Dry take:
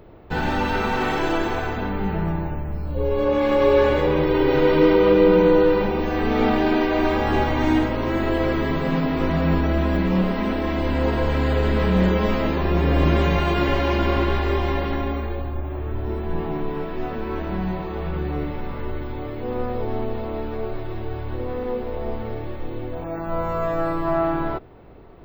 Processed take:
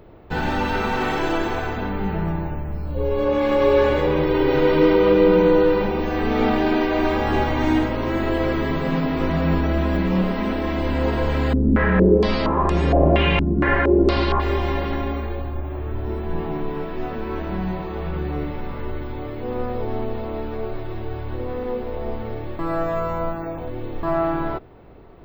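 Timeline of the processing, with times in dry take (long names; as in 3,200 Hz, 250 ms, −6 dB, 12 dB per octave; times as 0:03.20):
0:11.53–0:14.40: low-pass on a step sequencer 4.3 Hz 250–7,500 Hz
0:22.59–0:24.03: reverse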